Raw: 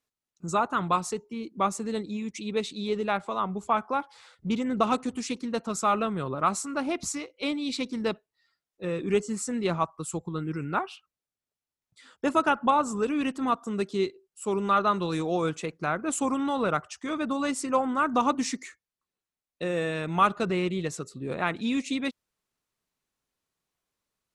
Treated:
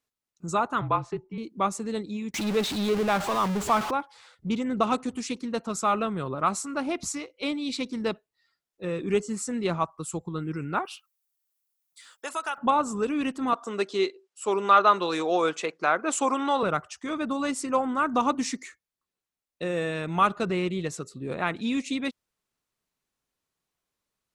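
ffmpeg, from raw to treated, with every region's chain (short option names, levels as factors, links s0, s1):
-filter_complex "[0:a]asettb=1/sr,asplit=3[s0][s1][s2];[s0]atrim=end=0.814[s3];[s1]atrim=start=0.81:end=1.38,asetpts=PTS-STARTPTS,afade=t=in:d=0.004:c=qsin,afade=t=out:st=0.566:d=0.004:c=qsin,lowpass=2400,afreqshift=-41[s4];[s2]atrim=start=1.376[s5];[s3][s4]acrossfade=d=0.004:c1=hsin:c2=qsin[s6];[s6][s5]acrossfade=d=0.004:c1=qsin:c2=hsin,asettb=1/sr,asplit=3[s7][s8][s9];[s7]atrim=end=2.344[s10];[s8]atrim=start=2.34:end=3.91,asetpts=PTS-STARTPTS,afade=t=in:d=0.004:c=qsin,afade=t=out:st=1.566:d=0.004:c=qsin,aeval=exprs='val(0)+0.5*0.0501*sgn(val(0))':c=same,highshelf=f=8800:g=-8[s11];[s9]atrim=start=3.906[s12];[s10][s11]acrossfade=d=0.004:c1=hsin:c2=qsin[s13];[s13][s12]acrossfade=d=0.004:c1=qsin:c2=hsin,asettb=1/sr,asplit=3[s14][s15][s16];[s14]atrim=end=10.854[s17];[s15]atrim=start=10.85:end=12.58,asetpts=PTS-STARTPTS,afade=t=in:d=0.004:c=qsin,afade=t=out:st=1.726:d=0.004:c=qsin,highpass=770,aemphasis=mode=production:type=50fm,acompressor=threshold=0.0316:ratio=2:attack=3.2:release=140:knee=1:detection=peak[s18];[s16]atrim=start=12.576[s19];[s17][s18]acrossfade=d=0.004:c1=hsin:c2=qsin[s20];[s20][s19]acrossfade=d=0.004:c1=qsin:c2=hsin,asettb=1/sr,asplit=3[s21][s22][s23];[s21]atrim=end=13.534[s24];[s22]atrim=start=13.53:end=16.63,asetpts=PTS-STARTPTS,afade=t=in:d=0.004:c=qsin,afade=t=out:st=3.096:d=0.004:c=qsin,acontrast=48,highpass=420,lowpass=7200[s25];[s23]atrim=start=16.626[s26];[s24][s25]acrossfade=d=0.004:c1=hsin:c2=qsin[s27];[s27][s26]acrossfade=d=0.004:c1=qsin:c2=hsin"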